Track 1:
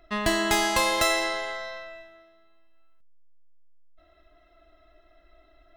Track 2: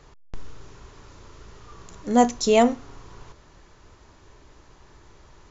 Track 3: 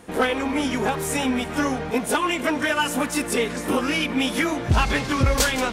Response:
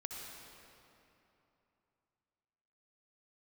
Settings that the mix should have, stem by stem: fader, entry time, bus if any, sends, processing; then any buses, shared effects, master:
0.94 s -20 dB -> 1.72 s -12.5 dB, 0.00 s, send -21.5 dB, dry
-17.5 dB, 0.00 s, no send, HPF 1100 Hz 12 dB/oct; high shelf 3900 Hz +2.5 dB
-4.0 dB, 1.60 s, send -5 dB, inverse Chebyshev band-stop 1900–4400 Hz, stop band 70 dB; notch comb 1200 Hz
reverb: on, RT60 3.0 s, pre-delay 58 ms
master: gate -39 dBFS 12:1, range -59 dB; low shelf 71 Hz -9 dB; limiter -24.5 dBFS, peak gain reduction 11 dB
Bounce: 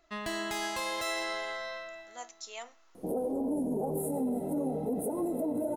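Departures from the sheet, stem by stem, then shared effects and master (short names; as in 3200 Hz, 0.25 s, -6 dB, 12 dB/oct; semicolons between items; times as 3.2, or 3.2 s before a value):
stem 1 -20.0 dB -> -9.5 dB; stem 3: entry 1.60 s -> 2.95 s; master: missing gate -39 dBFS 12:1, range -59 dB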